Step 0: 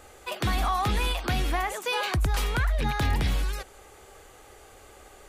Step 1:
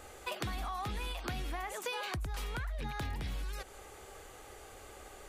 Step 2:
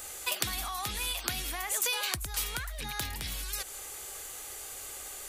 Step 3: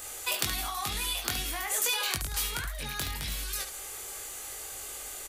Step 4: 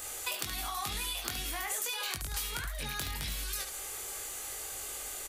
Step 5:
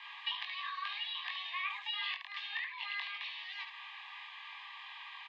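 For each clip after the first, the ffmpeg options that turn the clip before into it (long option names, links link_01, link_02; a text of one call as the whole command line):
ffmpeg -i in.wav -af "acompressor=threshold=-34dB:ratio=10,volume=-1dB" out.wav
ffmpeg -i in.wav -af "crystalizer=i=8:c=0,volume=-2.5dB" out.wav
ffmpeg -i in.wav -af "aecho=1:1:21|72:0.631|0.398" out.wav
ffmpeg -i in.wav -af "acompressor=threshold=-32dB:ratio=6" out.wav
ffmpeg -i in.wav -af "highpass=frequency=570:width_type=q:width=0.5412,highpass=frequency=570:width_type=q:width=1.307,lowpass=frequency=3100:width_type=q:width=0.5176,lowpass=frequency=3100:width_type=q:width=0.7071,lowpass=frequency=3100:width_type=q:width=1.932,afreqshift=380,asuperstop=centerf=1400:order=8:qfactor=3.4,volume=2.5dB" out.wav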